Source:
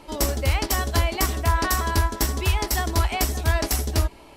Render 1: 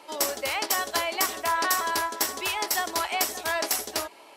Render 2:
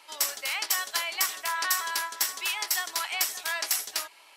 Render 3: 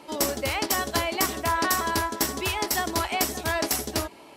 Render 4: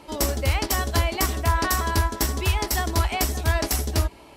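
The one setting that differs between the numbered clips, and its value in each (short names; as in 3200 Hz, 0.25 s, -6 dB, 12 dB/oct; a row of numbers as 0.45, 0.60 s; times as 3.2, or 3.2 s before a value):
HPF, cutoff: 500, 1400, 180, 45 Hz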